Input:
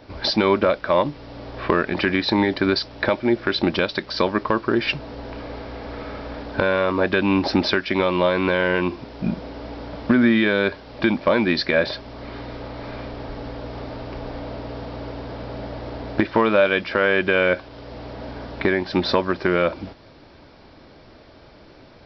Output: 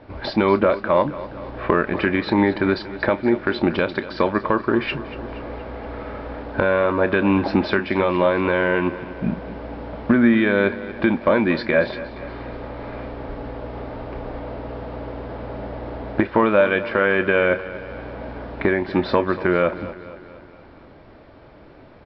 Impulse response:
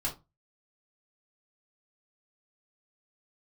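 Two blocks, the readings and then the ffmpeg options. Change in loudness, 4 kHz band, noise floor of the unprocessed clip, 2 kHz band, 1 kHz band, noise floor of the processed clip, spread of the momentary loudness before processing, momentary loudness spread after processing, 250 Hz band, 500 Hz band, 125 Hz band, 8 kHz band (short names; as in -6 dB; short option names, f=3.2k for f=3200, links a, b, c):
+0.5 dB, -7.5 dB, -48 dBFS, 0.0 dB, +1.0 dB, -46 dBFS, 16 LU, 15 LU, +1.0 dB, +1.0 dB, +1.0 dB, n/a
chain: -filter_complex "[0:a]lowpass=2.3k,asplit=2[a][b];[b]adelay=30,volume=-14dB[c];[a][c]amix=inputs=2:normalize=0,aecho=1:1:236|472|708|944|1180:0.168|0.094|0.0526|0.0295|0.0165,volume=1dB"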